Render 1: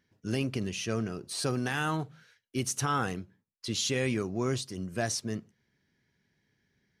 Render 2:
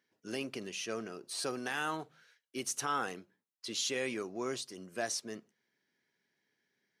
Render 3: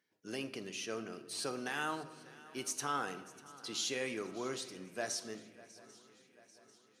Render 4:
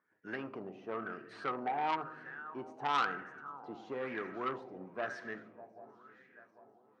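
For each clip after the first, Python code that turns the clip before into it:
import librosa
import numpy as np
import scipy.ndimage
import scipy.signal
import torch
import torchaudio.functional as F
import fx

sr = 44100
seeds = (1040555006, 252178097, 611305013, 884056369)

y1 = scipy.signal.sosfilt(scipy.signal.butter(2, 330.0, 'highpass', fs=sr, output='sos'), x)
y1 = y1 * 10.0 ** (-3.5 / 20.0)
y2 = fx.echo_swing(y1, sr, ms=792, ratio=3, feedback_pct=53, wet_db=-20)
y2 = fx.room_shoebox(y2, sr, seeds[0], volume_m3=710.0, walls='mixed', distance_m=0.45)
y2 = y2 * 10.0 ** (-2.5 / 20.0)
y3 = fx.filter_lfo_lowpass(y2, sr, shape='sine', hz=1.0, low_hz=760.0, high_hz=1800.0, q=5.4)
y3 = fx.transformer_sat(y3, sr, knee_hz=1800.0)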